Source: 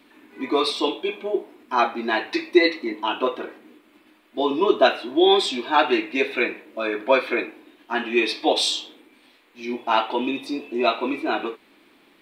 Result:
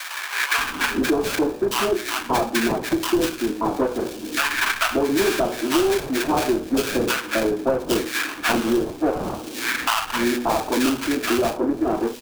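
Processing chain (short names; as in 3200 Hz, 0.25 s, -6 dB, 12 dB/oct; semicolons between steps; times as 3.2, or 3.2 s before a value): LPF 3000 Hz 12 dB/oct; low shelf 290 Hz +10 dB; de-hum 121.9 Hz, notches 16; flange 0.32 Hz, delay 3.7 ms, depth 6.5 ms, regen -52%; sample-rate reducer 2000 Hz, jitter 20%; soft clip -14 dBFS, distortion -13 dB; bands offset in time highs, lows 0.58 s, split 1100 Hz; three-band squash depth 100%; gain +4.5 dB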